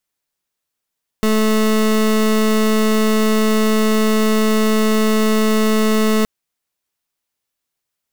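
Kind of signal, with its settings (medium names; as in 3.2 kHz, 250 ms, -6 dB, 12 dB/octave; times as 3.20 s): pulse 217 Hz, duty 27% -14.5 dBFS 5.02 s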